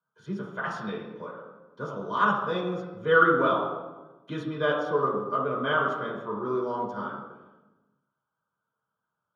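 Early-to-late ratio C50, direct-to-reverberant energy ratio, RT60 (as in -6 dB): 2.0 dB, -6.0 dB, 1.2 s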